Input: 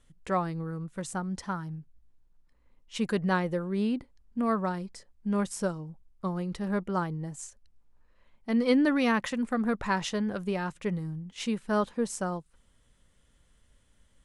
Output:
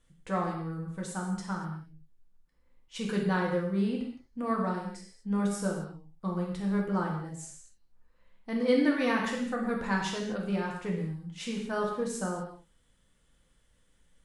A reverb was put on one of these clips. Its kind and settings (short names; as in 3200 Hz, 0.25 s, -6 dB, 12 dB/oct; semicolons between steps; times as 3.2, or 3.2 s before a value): non-linear reverb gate 0.27 s falling, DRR -2 dB; gain -5.5 dB